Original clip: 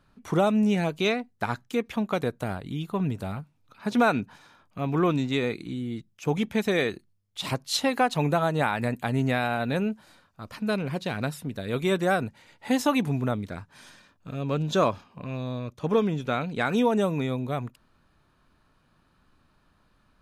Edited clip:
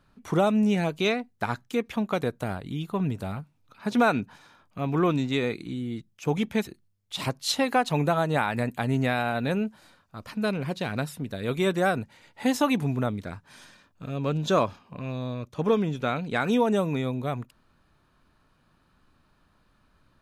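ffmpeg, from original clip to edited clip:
-filter_complex "[0:a]asplit=2[s0][s1];[s0]atrim=end=6.672[s2];[s1]atrim=start=6.918[s3];[s2][s3]acrossfade=d=0.004:c1=hsin:c2=hsin"

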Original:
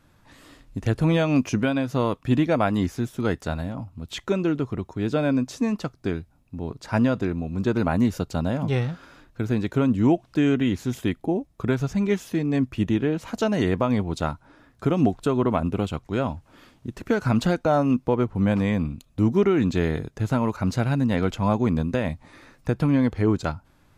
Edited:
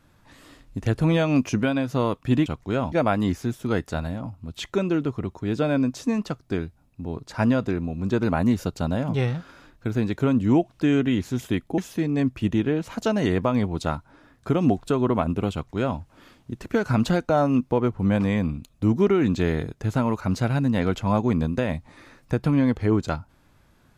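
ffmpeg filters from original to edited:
-filter_complex "[0:a]asplit=4[s0][s1][s2][s3];[s0]atrim=end=2.462[s4];[s1]atrim=start=15.888:end=16.352[s5];[s2]atrim=start=2.458:end=11.322[s6];[s3]atrim=start=12.138[s7];[s4][s5]acrossfade=d=0.004:c1=hsin:c2=hsin[s8];[s8][s6]acrossfade=d=0.004:c1=hsin:c2=hsin[s9];[s9][s7]acrossfade=d=0.004:c1=hsin:c2=hsin"

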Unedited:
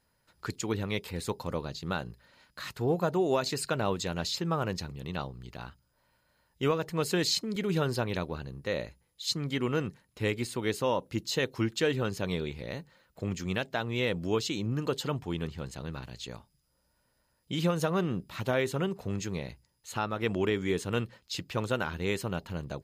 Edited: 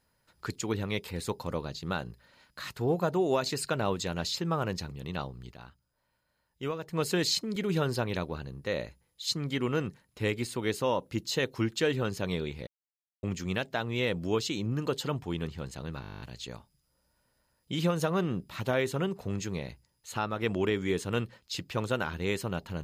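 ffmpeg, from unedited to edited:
-filter_complex "[0:a]asplit=15[s0][s1][s2][s3][s4][s5][s6][s7][s8][s9][s10][s11][s12][s13][s14];[s0]atrim=end=5.522[s15];[s1]atrim=start=5.518:end=6.932,asetpts=PTS-STARTPTS,volume=0.473[s16];[s2]atrim=start=6.928:end=12.67,asetpts=PTS-STARTPTS,afade=t=out:st=5.738:d=0.004:c=hsin[s17];[s3]atrim=start=12.67:end=13.23,asetpts=PTS-STARTPTS,volume=0[s18];[s4]atrim=start=13.23:end=16.032,asetpts=PTS-STARTPTS,afade=t=in:d=0.004:c=hsin[s19];[s5]atrim=start=16.008:end=16.032[s20];[s6]atrim=start=16.008:end=16.032[s21];[s7]atrim=start=16.008:end=16.032[s22];[s8]atrim=start=16.008:end=16.032[s23];[s9]atrim=start=16.008:end=16.032[s24];[s10]atrim=start=16.008:end=16.032[s25];[s11]atrim=start=16.008:end=16.032[s26];[s12]atrim=start=16.008:end=16.032[s27];[s13]atrim=start=16.008:end=16.032[s28];[s14]atrim=start=16.008[s29];[s15][s16]acrossfade=d=0.004:c1=hsin:c2=hsin[s30];[s17][s18][s19]concat=n=3:v=0:a=1[s31];[s30][s31]acrossfade=d=0.004:c1=hsin:c2=hsin[s32];[s32][s20]acrossfade=d=0.004:c1=hsin:c2=hsin[s33];[s33][s21]acrossfade=d=0.004:c1=hsin:c2=hsin[s34];[s34][s22]acrossfade=d=0.004:c1=hsin:c2=hsin[s35];[s35][s23]acrossfade=d=0.004:c1=hsin:c2=hsin[s36];[s36][s24]acrossfade=d=0.004:c1=hsin:c2=hsin[s37];[s37][s25]acrossfade=d=0.004:c1=hsin:c2=hsin[s38];[s38][s26]acrossfade=d=0.004:c1=hsin:c2=hsin[s39];[s39][s27]acrossfade=d=0.004:c1=hsin:c2=hsin[s40];[s40][s28]acrossfade=d=0.004:c1=hsin:c2=hsin[s41];[s41][s29]acrossfade=d=0.004:c1=hsin:c2=hsin"

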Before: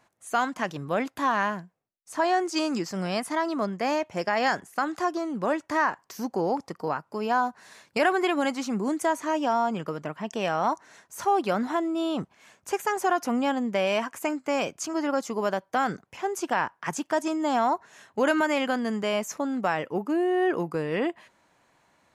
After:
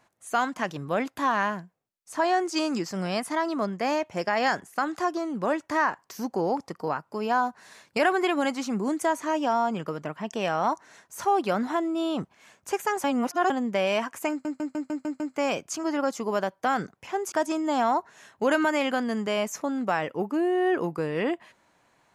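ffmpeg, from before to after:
-filter_complex "[0:a]asplit=10[s0][s1][s2][s3][s4][s5][s6][s7][s8][s9];[s0]atrim=end=13.042[s10];[s1]atrim=start=13.038:end=13.502,asetpts=PTS-STARTPTS,areverse[s11];[s2]atrim=start=13.498:end=14.452[s12];[s3]atrim=start=14.298:end=14.452[s13];[s4]atrim=start=14.298:end=14.452[s14];[s5]atrim=start=14.298:end=14.452[s15];[s6]atrim=start=14.298:end=14.452[s16];[s7]atrim=start=14.298:end=14.452[s17];[s8]atrim=start=14.298:end=16.422[s18];[s9]atrim=start=17.078[s19];[s10][s11]acrossfade=d=0.004:c1=hsin:c2=hsin[s20];[s20][s12]acrossfade=d=0.004:c1=hsin:c2=hsin[s21];[s21][s13]acrossfade=d=0.004:c1=hsin:c2=hsin[s22];[s22][s14]acrossfade=d=0.004:c1=hsin:c2=hsin[s23];[s23][s15]acrossfade=d=0.004:c1=hsin:c2=hsin[s24];[s24][s16]acrossfade=d=0.004:c1=hsin:c2=hsin[s25];[s25][s17]acrossfade=d=0.004:c1=hsin:c2=hsin[s26];[s26][s18]acrossfade=d=0.004:c1=hsin:c2=hsin[s27];[s27][s19]acrossfade=d=0.004:c1=hsin:c2=hsin"

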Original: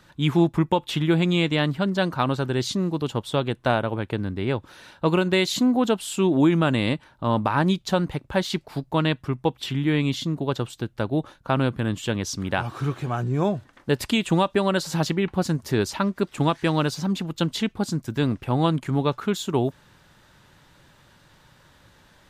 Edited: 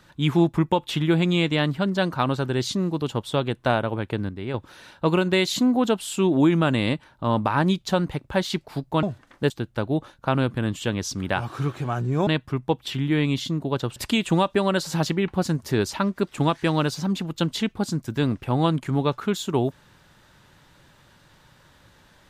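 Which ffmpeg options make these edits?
-filter_complex "[0:a]asplit=7[s0][s1][s2][s3][s4][s5][s6];[s0]atrim=end=4.292[s7];[s1]atrim=start=4.288:end=4.542,asetpts=PTS-STARTPTS,volume=0.531[s8];[s2]atrim=start=4.538:end=9.032[s9];[s3]atrim=start=13.488:end=13.962[s10];[s4]atrim=start=10.718:end=13.492[s11];[s5]atrim=start=9.028:end=10.722[s12];[s6]atrim=start=13.958[s13];[s7][s8]acrossfade=d=0.004:c1=hsin:c2=hsin[s14];[s14][s9]acrossfade=d=0.004:c1=hsin:c2=hsin[s15];[s15][s10]acrossfade=d=0.004:c1=hsin:c2=hsin[s16];[s16][s11]acrossfade=d=0.004:c1=hsin:c2=hsin[s17];[s17][s12]acrossfade=d=0.004:c1=hsin:c2=hsin[s18];[s18][s13]acrossfade=d=0.004:c1=hsin:c2=hsin"

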